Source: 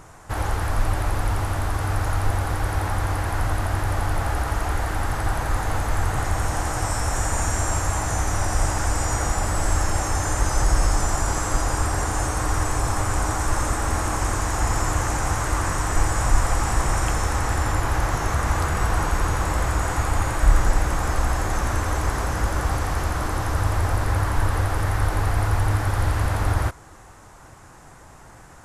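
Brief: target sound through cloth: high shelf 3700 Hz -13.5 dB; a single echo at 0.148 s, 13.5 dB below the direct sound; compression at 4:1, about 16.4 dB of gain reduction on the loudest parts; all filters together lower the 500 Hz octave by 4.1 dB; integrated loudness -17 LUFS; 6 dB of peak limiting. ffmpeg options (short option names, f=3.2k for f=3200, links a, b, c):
-af "equalizer=f=500:t=o:g=-5,acompressor=threshold=-31dB:ratio=4,alimiter=level_in=2dB:limit=-24dB:level=0:latency=1,volume=-2dB,highshelf=f=3.7k:g=-13.5,aecho=1:1:148:0.211,volume=20.5dB"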